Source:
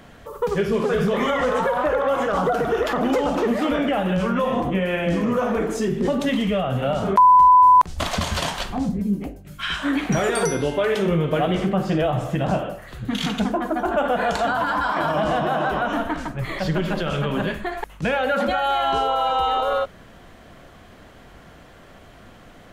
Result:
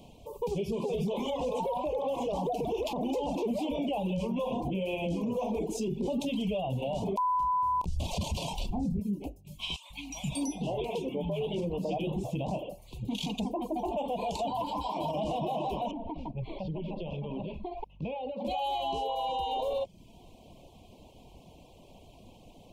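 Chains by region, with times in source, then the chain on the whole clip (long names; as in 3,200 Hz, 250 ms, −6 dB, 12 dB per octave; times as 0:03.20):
0:07.43–0:09.00: low-shelf EQ 210 Hz +11.5 dB + double-tracking delay 29 ms −8 dB
0:09.76–0:12.24: high-shelf EQ 3,900 Hz −3.5 dB + notch filter 410 Hz + three-band delay without the direct sound highs, lows, mids 140/520 ms, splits 180/1,100 Hz
0:15.91–0:18.45: high-frequency loss of the air 350 metres + downward compressor, threshold −25 dBFS
whole clip: elliptic band-stop filter 960–2,500 Hz, stop band 40 dB; reverb reduction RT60 0.59 s; brickwall limiter −19.5 dBFS; level −5 dB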